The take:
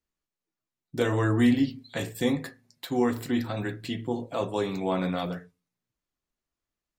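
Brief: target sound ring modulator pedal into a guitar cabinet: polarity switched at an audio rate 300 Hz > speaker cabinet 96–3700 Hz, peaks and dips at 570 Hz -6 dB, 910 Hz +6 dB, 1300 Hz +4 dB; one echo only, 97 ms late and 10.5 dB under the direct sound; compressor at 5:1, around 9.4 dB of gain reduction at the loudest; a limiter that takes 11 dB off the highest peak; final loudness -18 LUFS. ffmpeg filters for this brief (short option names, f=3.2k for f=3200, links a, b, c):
-af "acompressor=threshold=-28dB:ratio=5,alimiter=level_in=5dB:limit=-24dB:level=0:latency=1,volume=-5dB,aecho=1:1:97:0.299,aeval=exprs='val(0)*sgn(sin(2*PI*300*n/s))':c=same,highpass=96,equalizer=f=570:t=q:w=4:g=-6,equalizer=f=910:t=q:w=4:g=6,equalizer=f=1.3k:t=q:w=4:g=4,lowpass=f=3.7k:w=0.5412,lowpass=f=3.7k:w=1.3066,volume=21dB"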